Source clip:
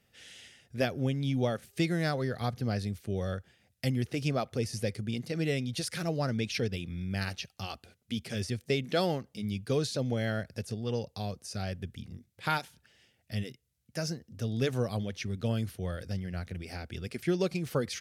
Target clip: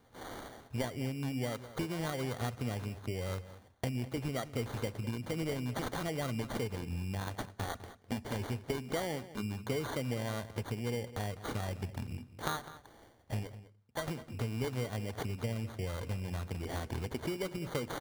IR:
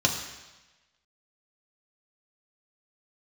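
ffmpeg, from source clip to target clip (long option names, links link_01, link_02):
-filter_complex "[0:a]asettb=1/sr,asplit=3[link_01][link_02][link_03];[link_01]atrim=end=13.474[link_04];[link_02]atrim=start=13.47:end=14.08,asetpts=PTS-STARTPTS,afade=type=in:duration=0.004:curve=qsin,afade=type=out:start_time=0.606:duration=0.004:curve=qsin,acrossover=split=530 2900:gain=0.224 1 0.158[link_05][link_06][link_07];[link_05][link_06][link_07]amix=inputs=3:normalize=0[link_08];[link_03]atrim=start=14.076[link_09];[link_04][link_08]acrossfade=duration=0.004:curve1=hsin:curve2=qsin[link_10];[link_10][link_09]acrossfade=duration=0.004:curve1=qsin:curve2=hsin,acrusher=samples=17:mix=1:aa=0.000001,acompressor=threshold=-39dB:ratio=6,asplit=2[link_11][link_12];[link_12]adelay=204.1,volume=-15dB,highshelf=frequency=4000:gain=-4.59[link_13];[link_11][link_13]amix=inputs=2:normalize=0,asplit=2[link_14][link_15];[1:a]atrim=start_sample=2205,asetrate=66150,aresample=44100[link_16];[link_15][link_16]afir=irnorm=-1:irlink=0,volume=-24dB[link_17];[link_14][link_17]amix=inputs=2:normalize=0,volume=5.5dB"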